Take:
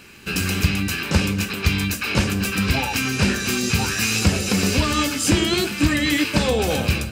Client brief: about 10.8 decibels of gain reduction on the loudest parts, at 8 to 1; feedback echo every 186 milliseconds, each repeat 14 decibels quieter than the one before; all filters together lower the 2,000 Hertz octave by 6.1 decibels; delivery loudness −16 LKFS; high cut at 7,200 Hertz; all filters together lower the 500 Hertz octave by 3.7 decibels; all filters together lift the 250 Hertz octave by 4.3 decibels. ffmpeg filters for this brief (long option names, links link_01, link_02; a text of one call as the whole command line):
ffmpeg -i in.wav -af "lowpass=7200,equalizer=frequency=250:width_type=o:gain=8,equalizer=frequency=500:width_type=o:gain=-8.5,equalizer=frequency=2000:width_type=o:gain=-8,acompressor=threshold=-22dB:ratio=8,aecho=1:1:186|372:0.2|0.0399,volume=10.5dB" out.wav